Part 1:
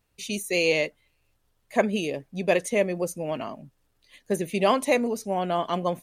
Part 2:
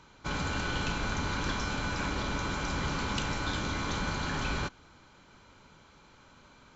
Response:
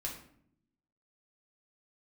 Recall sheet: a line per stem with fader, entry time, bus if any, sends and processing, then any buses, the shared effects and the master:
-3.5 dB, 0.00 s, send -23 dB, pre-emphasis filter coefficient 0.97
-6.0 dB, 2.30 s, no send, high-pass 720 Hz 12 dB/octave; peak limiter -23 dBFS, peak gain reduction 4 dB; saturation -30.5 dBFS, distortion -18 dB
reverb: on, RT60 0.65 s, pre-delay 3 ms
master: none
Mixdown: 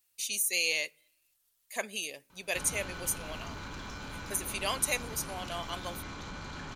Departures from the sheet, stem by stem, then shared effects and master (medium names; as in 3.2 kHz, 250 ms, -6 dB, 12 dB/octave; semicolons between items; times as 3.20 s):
stem 1 -3.5 dB -> +5.0 dB; stem 2: missing high-pass 720 Hz 12 dB/octave